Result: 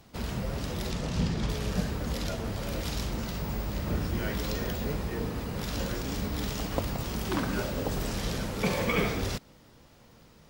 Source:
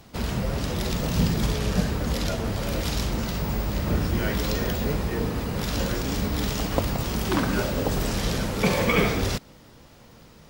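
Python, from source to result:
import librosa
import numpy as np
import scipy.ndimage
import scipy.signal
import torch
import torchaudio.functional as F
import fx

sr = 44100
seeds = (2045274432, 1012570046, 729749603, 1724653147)

y = fx.lowpass(x, sr, hz=fx.line((0.9, 10000.0), (1.48, 5500.0)), slope=12, at=(0.9, 1.48), fade=0.02)
y = F.gain(torch.from_numpy(y), -6.0).numpy()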